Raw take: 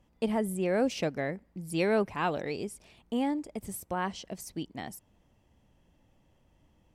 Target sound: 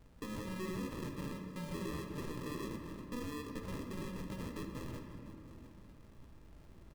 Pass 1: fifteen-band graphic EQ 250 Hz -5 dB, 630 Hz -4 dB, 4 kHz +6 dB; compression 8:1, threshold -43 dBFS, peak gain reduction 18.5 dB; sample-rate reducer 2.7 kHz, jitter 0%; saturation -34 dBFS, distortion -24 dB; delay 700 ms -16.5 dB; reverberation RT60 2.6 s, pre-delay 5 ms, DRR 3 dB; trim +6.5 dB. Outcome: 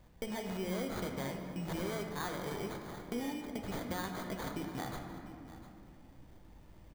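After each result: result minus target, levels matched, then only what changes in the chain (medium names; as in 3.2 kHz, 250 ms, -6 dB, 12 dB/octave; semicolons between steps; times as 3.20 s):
sample-rate reducer: distortion -15 dB; saturation: distortion -14 dB
change: sample-rate reducer 740 Hz, jitter 0%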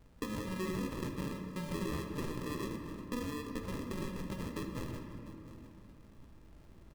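saturation: distortion -13 dB
change: saturation -45 dBFS, distortion -10 dB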